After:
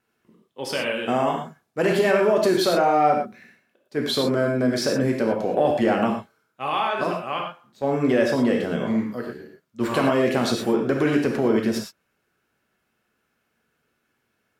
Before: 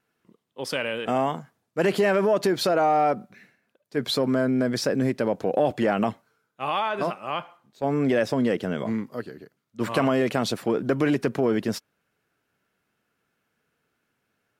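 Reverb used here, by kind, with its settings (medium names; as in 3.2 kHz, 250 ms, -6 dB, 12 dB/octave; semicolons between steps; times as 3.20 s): gated-style reverb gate 140 ms flat, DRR 0.5 dB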